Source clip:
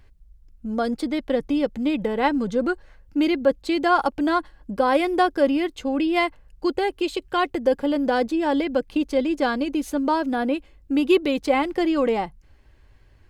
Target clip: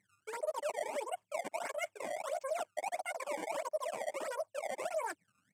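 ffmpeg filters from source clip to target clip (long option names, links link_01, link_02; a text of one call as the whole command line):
ffmpeg -i in.wav -af "afftdn=noise_reduction=27:noise_floor=-41,highshelf=frequency=2400:gain=-7.5,areverse,acompressor=threshold=-34dB:ratio=16,areverse,flanger=delay=18.5:depth=4.8:speed=2.2,acrusher=samples=38:mix=1:aa=0.000001:lfo=1:lforange=60.8:lforate=0.64,atempo=1.2,highpass=frequency=110:width=0.5412,highpass=frequency=110:width=1.3066,equalizer=frequency=110:width_type=q:width=4:gain=-6,equalizer=frequency=310:width_type=q:width=4:gain=8,equalizer=frequency=440:width_type=q:width=4:gain=6,equalizer=frequency=1100:width_type=q:width=4:gain=8,equalizer=frequency=2000:width_type=q:width=4:gain=-9,equalizer=frequency=4100:width_type=q:width=4:gain=10,lowpass=frequency=6300:width=0.5412,lowpass=frequency=6300:width=1.3066,asetrate=88200,aresample=44100,volume=-3dB" out.wav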